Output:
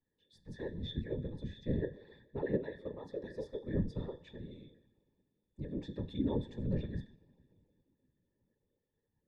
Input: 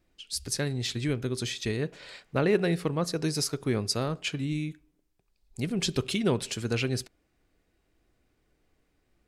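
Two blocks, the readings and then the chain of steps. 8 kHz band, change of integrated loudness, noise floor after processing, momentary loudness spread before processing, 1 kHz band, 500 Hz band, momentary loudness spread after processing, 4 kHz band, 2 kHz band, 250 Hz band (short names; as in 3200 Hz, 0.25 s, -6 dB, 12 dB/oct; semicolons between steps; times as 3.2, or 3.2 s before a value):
under -35 dB, -10.0 dB, -85 dBFS, 9 LU, -15.5 dB, -10.0 dB, 13 LU, -20.0 dB, -18.0 dB, -8.5 dB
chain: octave resonator A, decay 0.23 s; two-slope reverb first 0.66 s, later 3.2 s, from -16 dB, DRR 13.5 dB; whisperiser; gain +2 dB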